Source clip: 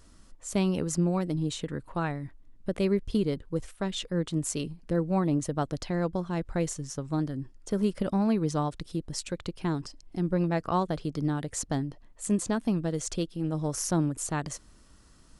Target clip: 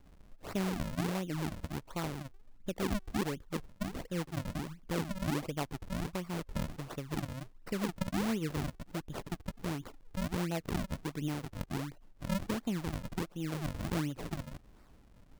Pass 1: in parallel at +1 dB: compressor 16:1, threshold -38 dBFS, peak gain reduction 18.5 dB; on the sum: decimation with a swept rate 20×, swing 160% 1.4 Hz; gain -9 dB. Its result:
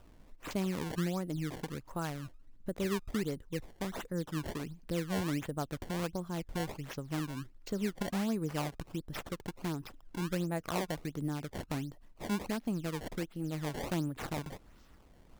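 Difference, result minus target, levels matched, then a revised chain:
decimation with a swept rate: distortion -10 dB
in parallel at +1 dB: compressor 16:1, threshold -38 dBFS, peak gain reduction 18.5 dB; on the sum: decimation with a swept rate 65×, swing 160% 1.4 Hz; gain -9 dB

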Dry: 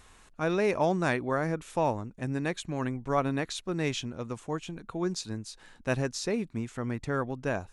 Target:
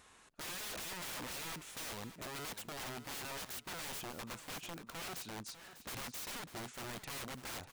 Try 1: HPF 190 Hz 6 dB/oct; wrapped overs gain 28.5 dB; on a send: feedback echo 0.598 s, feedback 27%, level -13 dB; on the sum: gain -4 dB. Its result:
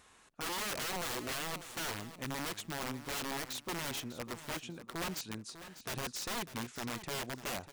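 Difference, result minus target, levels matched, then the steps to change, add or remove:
wrapped overs: distortion -14 dB
change: wrapped overs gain 35 dB

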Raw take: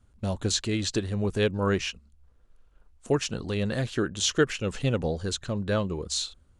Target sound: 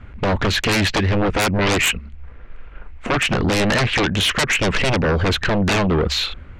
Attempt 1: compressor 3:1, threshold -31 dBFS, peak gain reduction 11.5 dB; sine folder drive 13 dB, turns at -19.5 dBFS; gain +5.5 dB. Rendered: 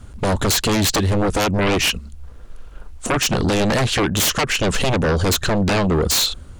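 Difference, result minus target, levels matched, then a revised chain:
2000 Hz band -4.0 dB
compressor 3:1, threshold -31 dBFS, peak gain reduction 11.5 dB; synth low-pass 2200 Hz, resonance Q 3.1; sine folder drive 13 dB, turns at -19.5 dBFS; gain +5.5 dB

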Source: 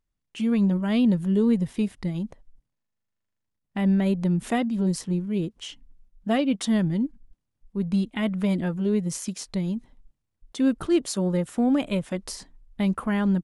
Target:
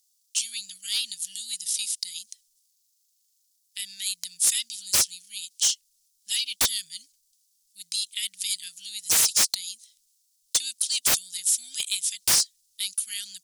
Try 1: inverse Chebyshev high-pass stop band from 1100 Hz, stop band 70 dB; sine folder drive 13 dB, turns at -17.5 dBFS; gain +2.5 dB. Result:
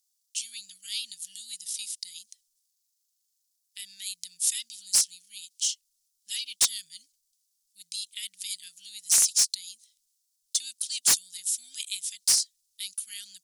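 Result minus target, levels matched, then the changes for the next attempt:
sine folder: distortion -10 dB
change: sine folder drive 20 dB, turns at -17.5 dBFS

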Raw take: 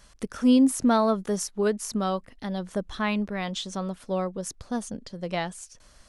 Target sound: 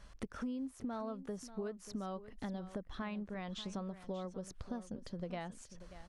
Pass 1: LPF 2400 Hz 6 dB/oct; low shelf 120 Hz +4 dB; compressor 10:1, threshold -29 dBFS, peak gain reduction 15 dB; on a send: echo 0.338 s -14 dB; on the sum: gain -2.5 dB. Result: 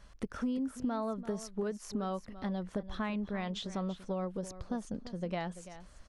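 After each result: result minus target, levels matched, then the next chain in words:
echo 0.249 s early; compressor: peak gain reduction -6.5 dB
LPF 2400 Hz 6 dB/oct; low shelf 120 Hz +4 dB; compressor 10:1, threshold -29 dBFS, peak gain reduction 15 dB; on a send: echo 0.587 s -14 dB; on the sum: gain -2.5 dB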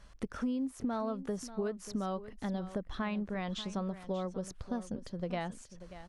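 compressor: peak gain reduction -6.5 dB
LPF 2400 Hz 6 dB/oct; low shelf 120 Hz +4 dB; compressor 10:1, threshold -36 dBFS, peak gain reduction 21 dB; on a send: echo 0.587 s -14 dB; on the sum: gain -2.5 dB

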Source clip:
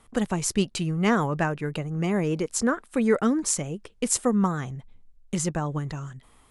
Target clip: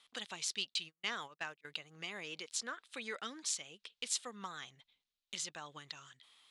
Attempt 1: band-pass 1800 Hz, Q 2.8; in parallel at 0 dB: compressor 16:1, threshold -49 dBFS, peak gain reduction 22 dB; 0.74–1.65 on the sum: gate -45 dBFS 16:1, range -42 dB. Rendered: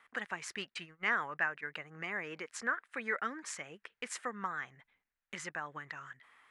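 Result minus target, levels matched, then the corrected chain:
4000 Hz band -10.5 dB
band-pass 3700 Hz, Q 2.8; in parallel at 0 dB: compressor 16:1, threshold -49 dBFS, peak gain reduction 17.5 dB; 0.74–1.65 on the sum: gate -45 dBFS 16:1, range -42 dB

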